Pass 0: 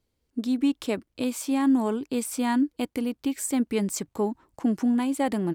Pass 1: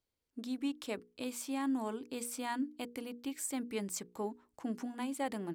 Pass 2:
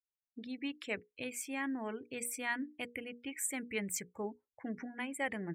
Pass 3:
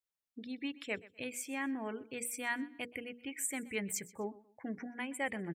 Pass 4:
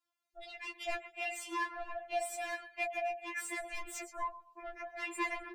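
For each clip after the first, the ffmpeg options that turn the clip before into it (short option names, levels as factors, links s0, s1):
-af "lowshelf=f=380:g=-7,bandreject=f=60:t=h:w=6,bandreject=f=120:t=h:w=6,bandreject=f=180:t=h:w=6,bandreject=f=240:t=h:w=6,bandreject=f=300:t=h:w=6,bandreject=f=360:t=h:w=6,bandreject=f=420:t=h:w=6,bandreject=f=480:t=h:w=6,volume=0.398"
-af "equalizer=f=250:t=o:w=1:g=-10,equalizer=f=1000:t=o:w=1:g=-7,equalizer=f=2000:t=o:w=1:g=11,equalizer=f=4000:t=o:w=1:g=-6,equalizer=f=8000:t=o:w=1:g=-3,afftdn=nr=34:nf=-52,bass=f=250:g=8,treble=f=4000:g=5,volume=1.19"
-af "aecho=1:1:125|250:0.1|0.03"
-filter_complex "[0:a]aeval=exprs='val(0)*sin(2*PI*210*n/s)':c=same,asplit=2[s0][s1];[s1]highpass=f=720:p=1,volume=14.1,asoftclip=type=tanh:threshold=0.0708[s2];[s0][s2]amix=inputs=2:normalize=0,lowpass=f=1900:p=1,volume=0.501,afftfilt=real='re*4*eq(mod(b,16),0)':imag='im*4*eq(mod(b,16),0)':win_size=2048:overlap=0.75,volume=1.12"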